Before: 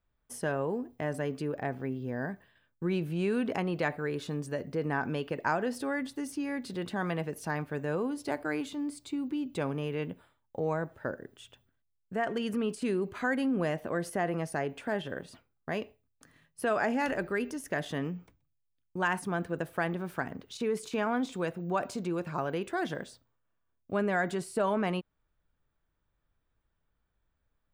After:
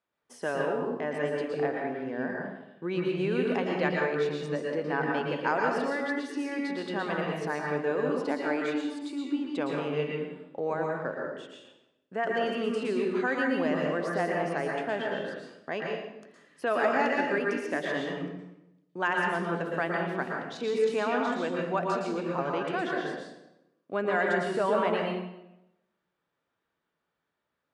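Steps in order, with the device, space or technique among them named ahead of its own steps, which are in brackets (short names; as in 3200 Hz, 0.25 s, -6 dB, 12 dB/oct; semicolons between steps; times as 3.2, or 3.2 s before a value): supermarket ceiling speaker (BPF 280–5200 Hz; reverb RT60 0.90 s, pre-delay 0.108 s, DRR -1 dB); gain +1 dB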